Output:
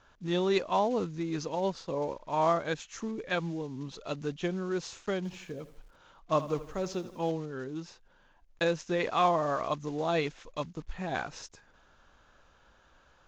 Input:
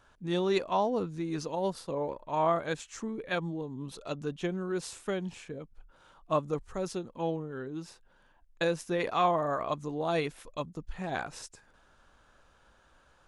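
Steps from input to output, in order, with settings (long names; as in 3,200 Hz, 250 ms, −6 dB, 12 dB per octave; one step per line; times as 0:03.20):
one scale factor per block 5 bits
elliptic low-pass filter 6,800 Hz, stop band 40 dB
0:05.17–0:07.31: feedback echo at a low word length 81 ms, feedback 55%, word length 9 bits, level −14.5 dB
level +1.5 dB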